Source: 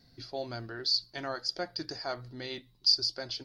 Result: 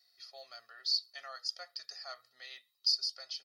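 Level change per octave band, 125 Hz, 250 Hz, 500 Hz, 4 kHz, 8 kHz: under -40 dB, under -35 dB, -16.5 dB, -4.0 dB, -2.5 dB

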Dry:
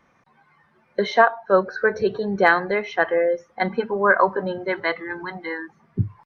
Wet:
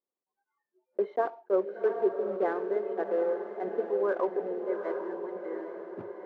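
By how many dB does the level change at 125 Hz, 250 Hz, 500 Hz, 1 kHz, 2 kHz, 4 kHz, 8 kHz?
under -20 dB, -8.0 dB, -6.5 dB, -14.5 dB, -22.5 dB, under -25 dB, no reading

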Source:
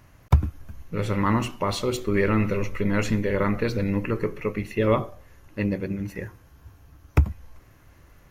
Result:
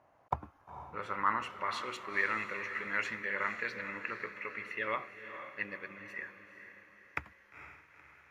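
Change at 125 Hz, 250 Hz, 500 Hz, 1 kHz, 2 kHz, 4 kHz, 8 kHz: -28.5 dB, -23.5 dB, -17.5 dB, -5.0 dB, -1.0 dB, -10.0 dB, -16.0 dB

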